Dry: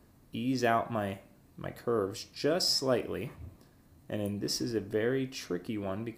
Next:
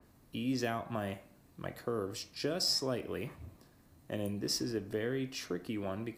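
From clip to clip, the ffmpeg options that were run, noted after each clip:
-filter_complex "[0:a]lowshelf=f=430:g=-3,acrossover=split=260|3000[a][b][c];[b]acompressor=threshold=-34dB:ratio=6[d];[a][d][c]amix=inputs=3:normalize=0,adynamicequalizer=threshold=0.00355:dfrequency=3300:dqfactor=0.7:tfrequency=3300:tqfactor=0.7:attack=5:release=100:ratio=0.375:range=2.5:mode=cutabove:tftype=highshelf"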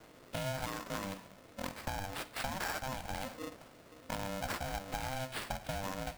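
-af "acompressor=threshold=-41dB:ratio=6,acrusher=samples=7:mix=1:aa=0.000001,aeval=exprs='val(0)*sgn(sin(2*PI*390*n/s))':c=same,volume=5.5dB"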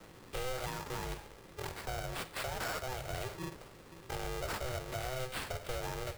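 -af "asoftclip=type=tanh:threshold=-35dB,afreqshift=-140,volume=3dB"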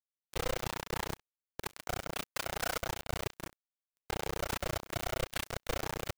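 -af "tremolo=f=30:d=0.919,aecho=1:1:116:0.211,acrusher=bits=5:mix=0:aa=0.5,volume=6dB"

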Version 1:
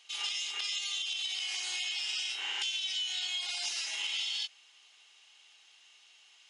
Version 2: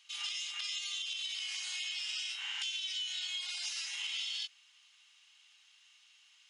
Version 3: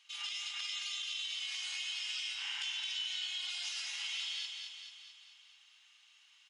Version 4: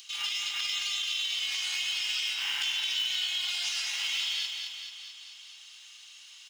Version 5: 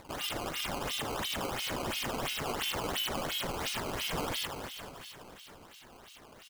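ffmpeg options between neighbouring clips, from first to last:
-af "highpass=f=1k:w=0.5412,highpass=f=1k:w=1.3066,volume=-3.5dB"
-af "highshelf=f=4.5k:g=-6,aecho=1:1:218|436|654|872|1090|1308|1526|1744:0.562|0.321|0.183|0.104|0.0594|0.0338|0.0193|0.011"
-filter_complex "[0:a]acrossover=split=2400|3300[a][b][c];[a]acrusher=bits=2:mode=log:mix=0:aa=0.000001[d];[c]acompressor=mode=upward:threshold=-50dB:ratio=2.5[e];[d][b][e]amix=inputs=3:normalize=0,volume=8dB"
-af "acrusher=samples=14:mix=1:aa=0.000001:lfo=1:lforange=22.4:lforate=2.9,aecho=1:1:667:0.1,volume=-3.5dB"

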